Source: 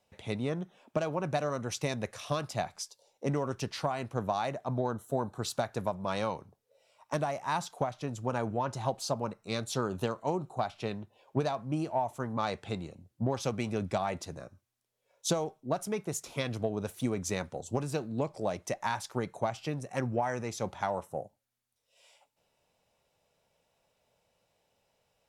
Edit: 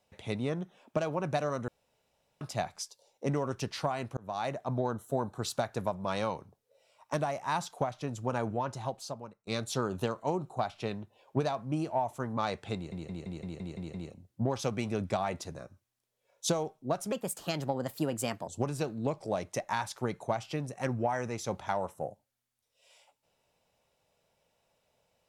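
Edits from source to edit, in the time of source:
0:01.68–0:02.41: fill with room tone
0:04.17–0:04.47: fade in
0:08.48–0:09.47: fade out, to −22 dB
0:12.75: stutter 0.17 s, 8 plays
0:15.93–0:17.61: play speed 124%

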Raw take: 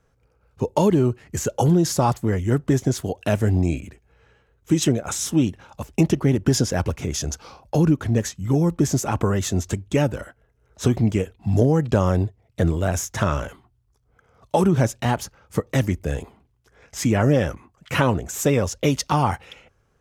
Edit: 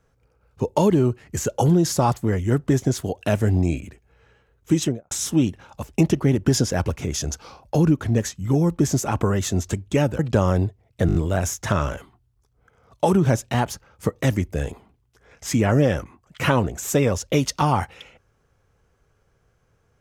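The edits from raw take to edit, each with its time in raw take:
0:04.74–0:05.11: fade out and dull
0:10.19–0:11.78: remove
0:12.66: stutter 0.02 s, 5 plays

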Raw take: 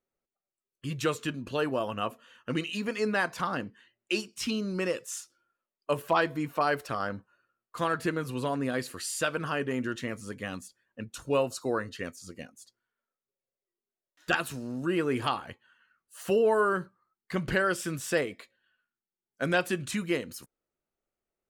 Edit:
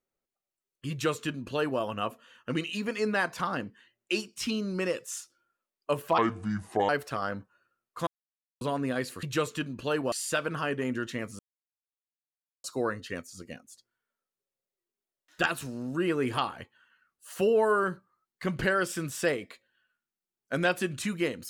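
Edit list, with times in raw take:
0:00.91–0:01.80: duplicate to 0:09.01
0:06.18–0:06.67: play speed 69%
0:07.85–0:08.39: silence
0:10.28–0:11.53: silence

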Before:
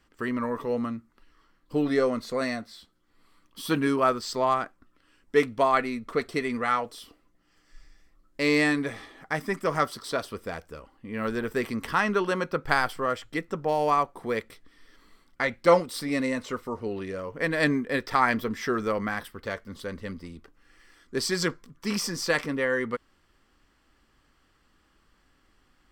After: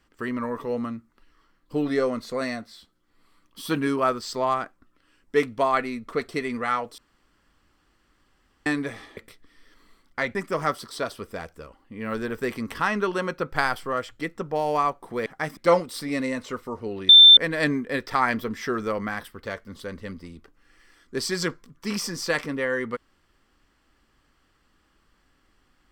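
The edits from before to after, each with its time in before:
0:06.98–0:08.66: fill with room tone
0:09.17–0:09.48: swap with 0:14.39–0:15.57
0:17.09–0:17.37: beep over 3,560 Hz −6.5 dBFS

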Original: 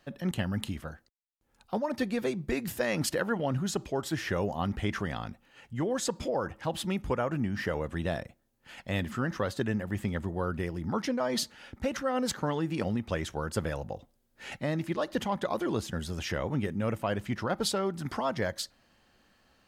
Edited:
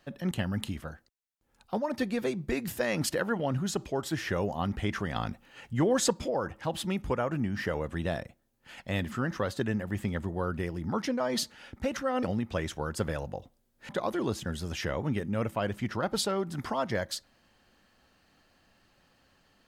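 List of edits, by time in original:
0:05.15–0:06.13: clip gain +5 dB
0:12.23–0:12.80: remove
0:14.46–0:15.36: remove

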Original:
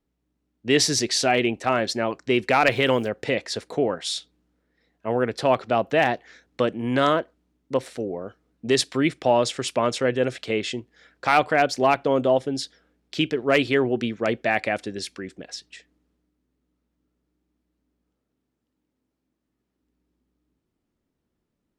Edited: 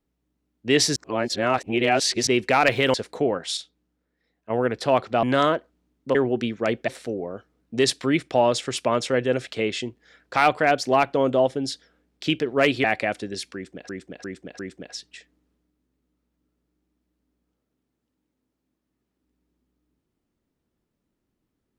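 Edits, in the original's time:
0:00.96–0:02.27: reverse
0:02.94–0:03.51: remove
0:04.14–0:05.07: clip gain −5.5 dB
0:05.80–0:06.87: remove
0:13.75–0:14.48: move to 0:07.79
0:15.18–0:15.53: repeat, 4 plays

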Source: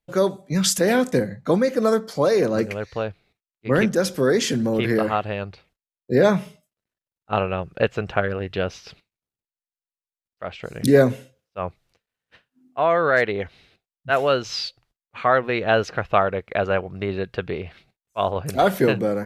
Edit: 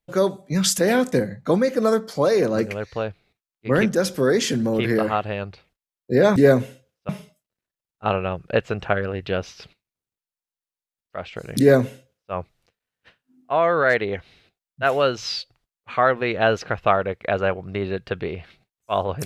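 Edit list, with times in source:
0:10.86–0:11.59: duplicate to 0:06.36

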